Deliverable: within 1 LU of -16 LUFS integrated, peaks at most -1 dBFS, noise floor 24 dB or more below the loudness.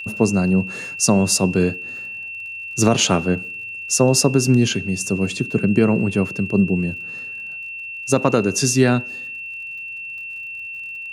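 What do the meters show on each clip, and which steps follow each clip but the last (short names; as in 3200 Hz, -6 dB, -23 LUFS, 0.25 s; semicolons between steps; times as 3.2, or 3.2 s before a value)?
ticks 49/s; steady tone 2700 Hz; tone level -29 dBFS; loudness -20.0 LUFS; peak -3.0 dBFS; loudness target -16.0 LUFS
-> de-click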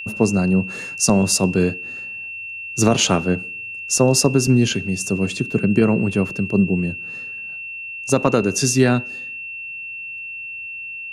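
ticks 0.27/s; steady tone 2700 Hz; tone level -29 dBFS
-> notch 2700 Hz, Q 30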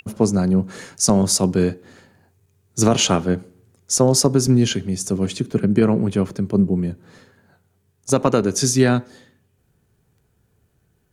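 steady tone none; loudness -19.0 LUFS; peak -3.0 dBFS; loudness target -16.0 LUFS
-> gain +3 dB; limiter -1 dBFS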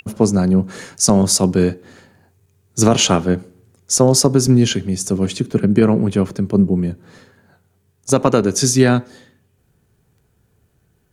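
loudness -16.0 LUFS; peak -1.0 dBFS; noise floor -62 dBFS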